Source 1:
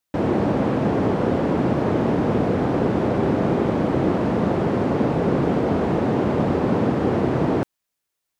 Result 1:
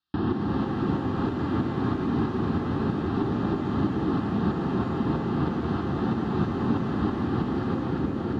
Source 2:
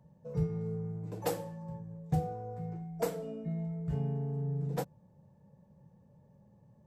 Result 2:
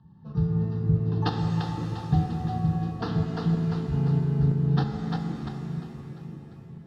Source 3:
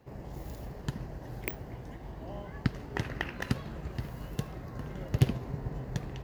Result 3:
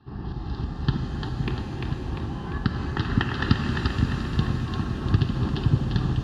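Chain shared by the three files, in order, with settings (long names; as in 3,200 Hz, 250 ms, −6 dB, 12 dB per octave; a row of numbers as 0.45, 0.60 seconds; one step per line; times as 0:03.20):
parametric band 160 Hz −3 dB 0.77 octaves
echo with a time of its own for lows and highs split 400 Hz, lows 515 ms, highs 347 ms, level −4 dB
downward compressor 5 to 1, threshold −27 dBFS
Chebyshev low-pass filter 4,500 Hz, order 3
phaser with its sweep stopped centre 2,200 Hz, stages 6
notch comb filter 490 Hz
shaped tremolo saw up 3.1 Hz, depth 55%
reverb with rising layers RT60 2.7 s, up +7 semitones, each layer −8 dB, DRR 5.5 dB
loudness normalisation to −27 LKFS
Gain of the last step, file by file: +8.5, +15.5, +15.5 decibels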